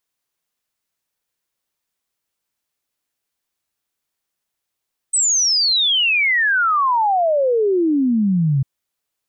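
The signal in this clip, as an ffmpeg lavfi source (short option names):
-f lavfi -i "aevalsrc='0.211*clip(min(t,3.5-t)/0.01,0,1)*sin(2*PI*8300*3.5/log(130/8300)*(exp(log(130/8300)*t/3.5)-1))':d=3.5:s=44100"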